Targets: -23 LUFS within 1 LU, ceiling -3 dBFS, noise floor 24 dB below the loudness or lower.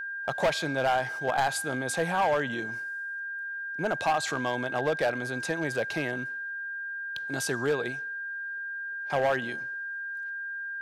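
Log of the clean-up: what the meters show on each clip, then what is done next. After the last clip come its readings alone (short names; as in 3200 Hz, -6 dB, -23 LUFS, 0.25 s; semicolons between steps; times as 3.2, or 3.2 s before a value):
clipped 1.4%; flat tops at -20.0 dBFS; steady tone 1600 Hz; tone level -33 dBFS; loudness -30.0 LUFS; peak -20.0 dBFS; loudness target -23.0 LUFS
-> clip repair -20 dBFS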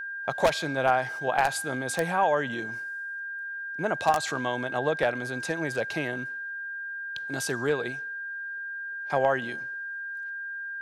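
clipped 0.0%; steady tone 1600 Hz; tone level -33 dBFS
-> notch 1600 Hz, Q 30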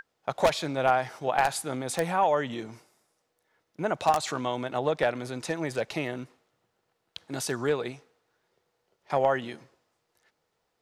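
steady tone none; loudness -28.5 LUFS; peak -10.5 dBFS; loudness target -23.0 LUFS
-> gain +5.5 dB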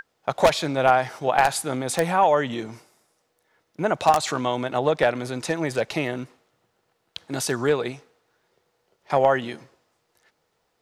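loudness -23.0 LUFS; peak -5.0 dBFS; noise floor -72 dBFS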